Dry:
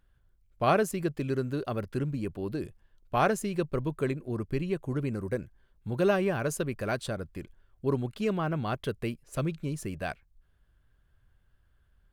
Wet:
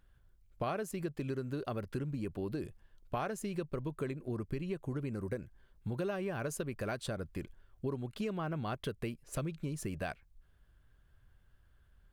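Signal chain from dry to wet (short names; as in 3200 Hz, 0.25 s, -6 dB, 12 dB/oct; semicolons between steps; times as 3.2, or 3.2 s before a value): compressor 6:1, threshold -35 dBFS, peak gain reduction 15 dB; gain +1 dB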